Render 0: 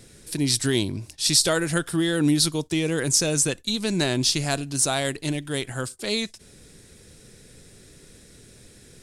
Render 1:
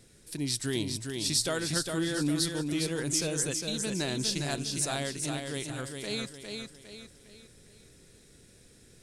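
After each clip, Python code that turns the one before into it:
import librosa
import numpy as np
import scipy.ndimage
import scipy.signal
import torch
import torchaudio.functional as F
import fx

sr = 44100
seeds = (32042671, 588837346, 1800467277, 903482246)

y = fx.echo_feedback(x, sr, ms=406, feedback_pct=41, wet_db=-5.0)
y = y * librosa.db_to_amplitude(-9.0)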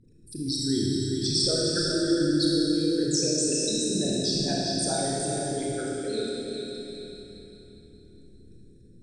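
y = fx.envelope_sharpen(x, sr, power=3.0)
y = scipy.signal.sosfilt(scipy.signal.butter(2, 9600.0, 'lowpass', fs=sr, output='sos'), y)
y = fx.rev_schroeder(y, sr, rt60_s=3.2, comb_ms=26, drr_db=-4.5)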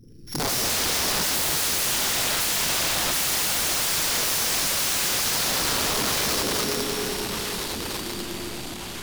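y = np.r_[np.sort(x[:len(x) // 8 * 8].reshape(-1, 8), axis=1).ravel(), x[len(x) // 8 * 8:]]
y = (np.mod(10.0 ** (29.0 / 20.0) * y + 1.0, 2.0) - 1.0) / 10.0 ** (29.0 / 20.0)
y = fx.echo_pitch(y, sr, ms=110, semitones=-3, count=3, db_per_echo=-6.0)
y = y * librosa.db_to_amplitude(8.5)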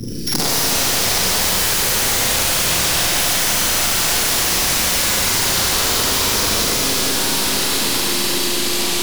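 y = fx.rev_schroeder(x, sr, rt60_s=3.2, comb_ms=33, drr_db=-6.5)
y = fx.band_squash(y, sr, depth_pct=100)
y = y * librosa.db_to_amplitude(-1.0)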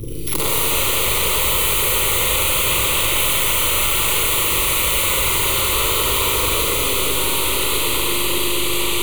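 y = fx.fixed_phaser(x, sr, hz=1100.0, stages=8)
y = fx.add_hum(y, sr, base_hz=50, snr_db=17)
y = y * librosa.db_to_amplitude(2.5)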